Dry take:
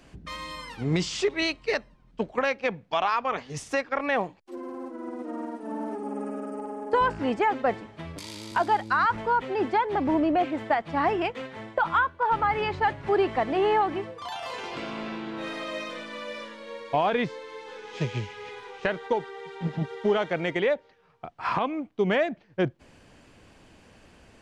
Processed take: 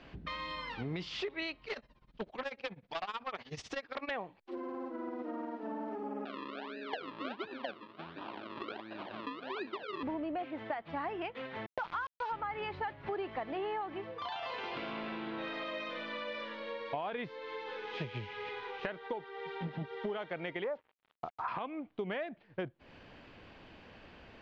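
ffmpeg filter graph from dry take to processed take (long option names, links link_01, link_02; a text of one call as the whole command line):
ffmpeg -i in.wav -filter_complex "[0:a]asettb=1/sr,asplit=3[link_01][link_02][link_03];[link_01]atrim=end=1.664[link_04];[link_02]atrim=start=1.66:end=4.11,asetpts=PTS-STARTPTS,afade=type=in:duration=0.004:curve=qsin,afade=type=out:start_time=2.446:duration=0.004:curve=qsin,bass=frequency=250:gain=0,treble=frequency=4000:gain=10,aeval=exprs='0.0944*(abs(mod(val(0)/0.0944+3,4)-2)-1)':channel_layout=same,tremolo=f=16:d=0.9[link_05];[link_03]atrim=start=4.106[link_06];[link_04][link_05]acrossfade=duration=0.004:curve1=hsin:curve2=qsin[link_07];[link_07][link_06]acrossfade=duration=0.004:curve1=qsin:curve2=hsin,asettb=1/sr,asplit=3[link_08][link_09][link_10];[link_08]atrim=end=6.254[link_11];[link_09]atrim=start=6.25:end=10.03,asetpts=PTS-STARTPTS,afade=type=in:duration=0.004:curve=qsin,afade=type=out:start_time=3.776:duration=0.004:curve=qsin,asuperstop=centerf=1100:order=8:qfactor=0.72,acrusher=samples=40:mix=1:aa=0.000001:lfo=1:lforange=40:lforate=1.4,highpass=300,equalizer=frequency=470:width_type=q:width=4:gain=-10,equalizer=frequency=1000:width_type=q:width=4:gain=4,equalizer=frequency=2000:width_type=q:width=4:gain=-6,lowpass=frequency=4000:width=0.5412,lowpass=frequency=4000:width=1.3066[link_12];[link_10]atrim=start=10.026[link_13];[link_11][link_12]acrossfade=duration=0.004:curve1=hsin:curve2=qsin[link_14];[link_14][link_13]acrossfade=duration=0.004:curve1=qsin:curve2=hsin,asettb=1/sr,asplit=3[link_15][link_16][link_17];[link_15]atrim=end=11.664[link_18];[link_16]atrim=start=11.66:end=12.32,asetpts=PTS-STARTPTS,afade=type=in:duration=0.004:curve=qsin,afade=type=out:start_time=0.656:duration=0.004:curve=qsin,bandreject=frequency=570:width=7.7,aeval=exprs='val(0)*gte(abs(val(0)),0.0335)':channel_layout=same,highshelf=frequency=7100:gain=-11[link_19];[link_17]atrim=start=12.316[link_20];[link_18][link_19]acrossfade=duration=0.004:curve1=hsin:curve2=qsin[link_21];[link_21][link_20]acrossfade=duration=0.004:curve1=qsin:curve2=hsin,asettb=1/sr,asplit=3[link_22][link_23][link_24];[link_22]atrim=end=20.644[link_25];[link_23]atrim=start=20.64:end=21.48,asetpts=PTS-STARTPTS,afade=type=in:duration=0.004:curve=qsin,afade=type=out:start_time=0.836:duration=0.004:curve=qsin,lowpass=frequency=1100:width_type=q:width=2.1,acrusher=bits=7:mix=0:aa=0.5[link_26];[link_24]atrim=start=21.476[link_27];[link_25][link_26]acrossfade=duration=0.004:curve1=hsin:curve2=qsin[link_28];[link_28][link_27]acrossfade=duration=0.004:curve1=qsin:curve2=hsin,lowpass=frequency=4100:width=0.5412,lowpass=frequency=4100:width=1.3066,lowshelf=frequency=350:gain=-4.5,acompressor=threshold=-39dB:ratio=4,volume=1.5dB" out.wav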